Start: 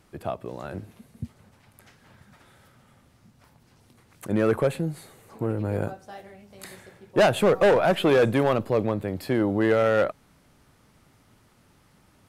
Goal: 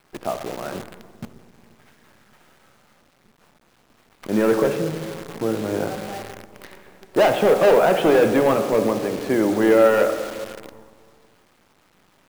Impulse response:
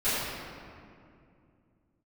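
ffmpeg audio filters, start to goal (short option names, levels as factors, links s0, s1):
-filter_complex "[0:a]highpass=200,lowpass=2500,asoftclip=type=hard:threshold=0.158,asplit=2[s0][s1];[1:a]atrim=start_sample=2205,asetrate=57330,aresample=44100[s2];[s1][s2]afir=irnorm=-1:irlink=0,volume=0.158[s3];[s0][s3]amix=inputs=2:normalize=0,acrusher=bits=7:dc=4:mix=0:aa=0.000001,volume=1.58"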